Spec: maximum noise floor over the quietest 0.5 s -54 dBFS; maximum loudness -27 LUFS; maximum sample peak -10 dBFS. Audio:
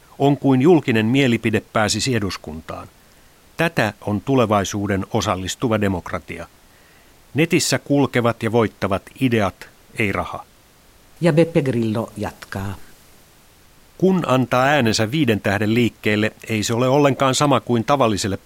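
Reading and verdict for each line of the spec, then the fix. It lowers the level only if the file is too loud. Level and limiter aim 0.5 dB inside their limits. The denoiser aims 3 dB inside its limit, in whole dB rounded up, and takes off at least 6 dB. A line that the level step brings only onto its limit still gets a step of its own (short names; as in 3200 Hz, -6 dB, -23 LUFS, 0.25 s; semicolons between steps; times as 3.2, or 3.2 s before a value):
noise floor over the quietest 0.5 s -51 dBFS: fail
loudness -19.0 LUFS: fail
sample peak -3.5 dBFS: fail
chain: gain -8.5 dB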